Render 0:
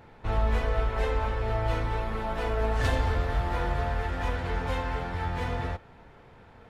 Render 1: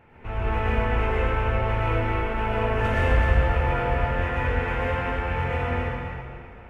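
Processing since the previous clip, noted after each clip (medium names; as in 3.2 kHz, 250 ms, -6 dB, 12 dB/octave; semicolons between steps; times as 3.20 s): resonant high shelf 3.3 kHz -7 dB, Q 3; thinning echo 257 ms, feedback 27%, level -6 dB; reverberation RT60 1.7 s, pre-delay 98 ms, DRR -7 dB; trim -4 dB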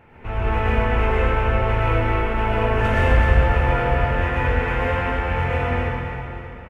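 delay 580 ms -14.5 dB; trim +4 dB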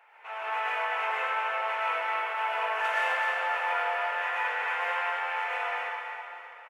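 inverse Chebyshev high-pass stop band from 160 Hz, stop band 70 dB; trim -3.5 dB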